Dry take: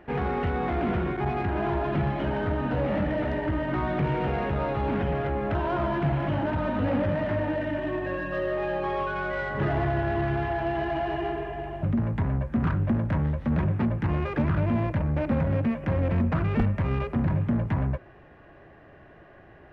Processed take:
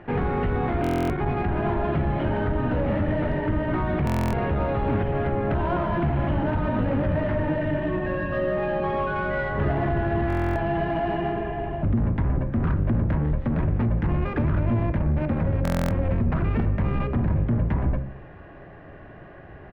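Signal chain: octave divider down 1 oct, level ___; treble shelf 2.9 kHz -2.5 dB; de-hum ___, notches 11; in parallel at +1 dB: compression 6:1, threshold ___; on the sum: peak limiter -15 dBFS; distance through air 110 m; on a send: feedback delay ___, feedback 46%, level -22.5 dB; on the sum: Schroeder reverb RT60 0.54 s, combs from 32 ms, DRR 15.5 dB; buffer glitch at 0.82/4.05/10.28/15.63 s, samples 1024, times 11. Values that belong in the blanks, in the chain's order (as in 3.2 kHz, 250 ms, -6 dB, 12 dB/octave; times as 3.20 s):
0 dB, 66.96 Hz, -34 dBFS, 177 ms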